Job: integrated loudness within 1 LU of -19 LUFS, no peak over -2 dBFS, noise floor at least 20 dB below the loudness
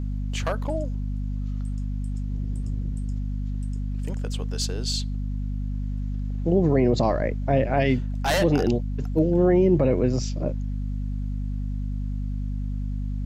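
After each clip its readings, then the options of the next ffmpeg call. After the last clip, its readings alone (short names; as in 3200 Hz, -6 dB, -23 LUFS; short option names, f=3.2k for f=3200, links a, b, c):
hum 50 Hz; harmonics up to 250 Hz; hum level -25 dBFS; loudness -26.0 LUFS; peak -8.5 dBFS; loudness target -19.0 LUFS
-> -af "bandreject=f=50:t=h:w=4,bandreject=f=100:t=h:w=4,bandreject=f=150:t=h:w=4,bandreject=f=200:t=h:w=4,bandreject=f=250:t=h:w=4"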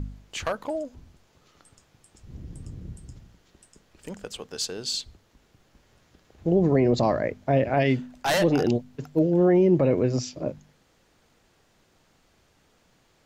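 hum none; loudness -24.0 LUFS; peak -10.0 dBFS; loudness target -19.0 LUFS
-> -af "volume=5dB"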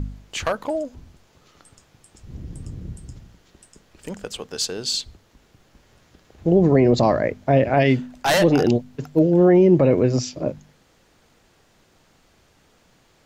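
loudness -19.0 LUFS; peak -5.0 dBFS; noise floor -59 dBFS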